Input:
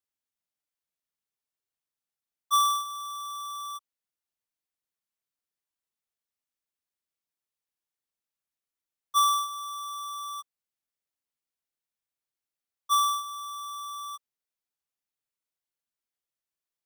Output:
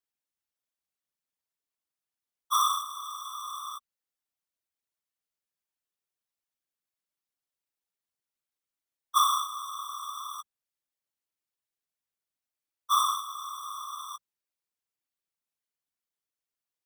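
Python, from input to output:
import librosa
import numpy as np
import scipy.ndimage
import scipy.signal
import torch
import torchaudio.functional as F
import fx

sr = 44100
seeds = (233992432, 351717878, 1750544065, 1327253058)

y = fx.hum_notches(x, sr, base_hz=60, count=3)
y = fx.whisperise(y, sr, seeds[0])
y = y * 10.0 ** (-1.5 / 20.0)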